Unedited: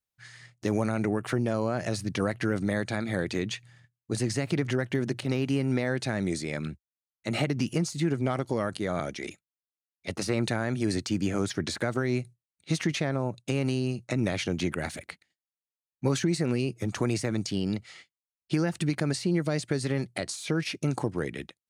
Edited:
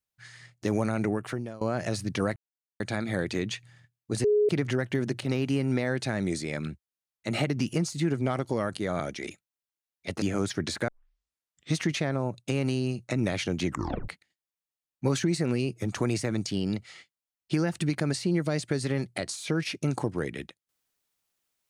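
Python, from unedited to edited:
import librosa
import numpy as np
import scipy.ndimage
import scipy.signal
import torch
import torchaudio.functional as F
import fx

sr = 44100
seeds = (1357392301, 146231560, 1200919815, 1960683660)

y = fx.edit(x, sr, fx.fade_out_to(start_s=1.09, length_s=0.52, floor_db=-20.0),
    fx.silence(start_s=2.36, length_s=0.44),
    fx.bleep(start_s=4.24, length_s=0.25, hz=418.0, db=-19.0),
    fx.cut(start_s=10.22, length_s=1.0),
    fx.tape_start(start_s=11.88, length_s=0.87),
    fx.tape_stop(start_s=14.67, length_s=0.41), tone=tone)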